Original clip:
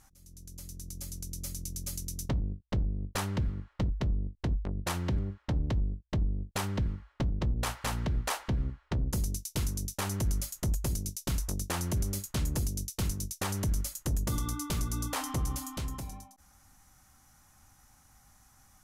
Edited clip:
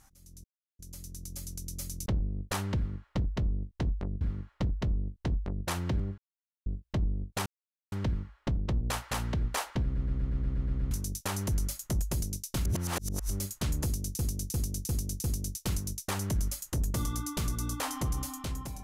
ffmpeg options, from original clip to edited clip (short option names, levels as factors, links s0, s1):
-filter_complex "[0:a]asplit=22[s0][s1][s2][s3][s4][s5][s6][s7][s8][s9][s10][s11][s12][s13][s14][s15][s16][s17][s18][s19][s20][s21];[s0]atrim=end=0.44,asetpts=PTS-STARTPTS,afade=t=out:st=0.436:d=0.004:c=hsin,apad=pad_dur=0.35[s22];[s1]atrim=start=0.44:end=1.712,asetpts=PTS-STARTPTS,afade=t=in:d=0.004:c=hsin[s23];[s2]atrim=start=2.698:end=4.852[s24];[s3]atrim=start=3.398:end=5.37,asetpts=PTS-STARTPTS,afade=t=out:st=1.968:d=0.004:c=hsin[s25];[s4]atrim=start=5.37:end=5.85,asetpts=PTS-STARTPTS,volume=0[s26];[s5]atrim=start=5.85:end=6.65,asetpts=PTS-STARTPTS,afade=t=in:d=0.004:c=hsin,afade=t=out:st=0.796:d=0.004:c=hsin,apad=pad_dur=0.46[s27];[s6]atrim=start=6.65:end=8.682,asetpts=PTS-STARTPTS,afade=t=in:d=0.004:c=hsin[s28];[s7]atrim=start=8.558:end=8.682[s29];[s8]atrim=start=8.558:end=8.682[s30];[s9]atrim=start=8.558:end=8.682[s31];[s10]atrim=start=8.558:end=8.682[s32];[s11]atrim=start=8.558:end=8.682[s33];[s12]atrim=start=8.558:end=8.682[s34];[s13]atrim=start=8.558:end=8.682[s35];[s14]atrim=start=8.558:end=8.682[s36];[s15]atrim=start=9.638:end=11.382[s37];[s16]atrim=start=11.378:end=12.032,asetpts=PTS-STARTPTS,areverse[s38];[s17]atrim=start=12.028:end=12.922[s39];[s18]atrim=start=12.568:end=12.922[s40];[s19]atrim=start=12.568:end=12.922[s41];[s20]atrim=start=12.568:end=12.922[s42];[s21]atrim=start=12.568[s43];[s22][s23]concat=n=2:v=0:a=1[s44];[s44][s24]acrossfade=d=0.004:c1=hsin:c2=hsin[s45];[s25][s26][s27][s28]concat=n=4:v=0:a=1[s46];[s45][s46]acrossfade=d=0.004:c1=hsin:c2=hsin[s47];[s47][s29]acrossfade=d=0.004:c1=hsin:c2=hsin[s48];[s48][s30]acrossfade=d=0.004:c1=hsin:c2=hsin[s49];[s49][s31]acrossfade=d=0.004:c1=hsin:c2=hsin[s50];[s50][s32]acrossfade=d=0.004:c1=hsin:c2=hsin[s51];[s51][s33]acrossfade=d=0.004:c1=hsin:c2=hsin[s52];[s52][s34]acrossfade=d=0.004:c1=hsin:c2=hsin[s53];[s53][s35]acrossfade=d=0.004:c1=hsin:c2=hsin[s54];[s54][s36]acrossfade=d=0.004:c1=hsin:c2=hsin[s55];[s55][s37]acrossfade=d=0.004:c1=hsin:c2=hsin[s56];[s56][s38]acrossfade=d=0.004:c1=hsin:c2=hsin[s57];[s57][s39]acrossfade=d=0.004:c1=hsin:c2=hsin[s58];[s58][s40]acrossfade=d=0.004:c1=hsin:c2=hsin[s59];[s59][s41]acrossfade=d=0.004:c1=hsin:c2=hsin[s60];[s60][s42]acrossfade=d=0.004:c1=hsin:c2=hsin[s61];[s61][s43]acrossfade=d=0.004:c1=hsin:c2=hsin"